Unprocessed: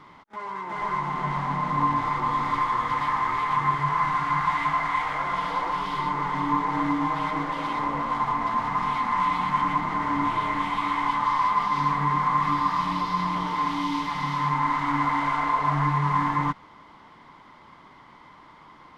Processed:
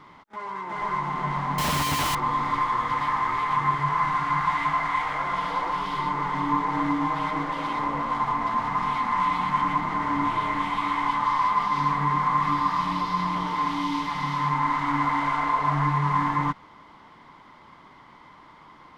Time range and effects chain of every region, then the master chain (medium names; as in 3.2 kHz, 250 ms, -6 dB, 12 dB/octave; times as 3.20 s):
1.58–2.15 s: one-bit comparator + peaking EQ 74 Hz +7 dB 1.2 oct + doubling 13 ms -11.5 dB
whole clip: none